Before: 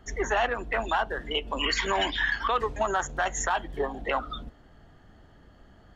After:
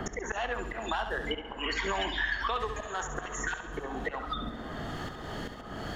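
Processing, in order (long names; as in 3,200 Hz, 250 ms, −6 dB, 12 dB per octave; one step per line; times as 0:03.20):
time-frequency box erased 0:03.26–0:03.53, 380–1,400 Hz
volume swells 539 ms
flutter between parallel walls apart 11.6 metres, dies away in 0.47 s
on a send at −16 dB: convolution reverb RT60 4.1 s, pre-delay 10 ms
on the sum: multiband upward and downward compressor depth 100%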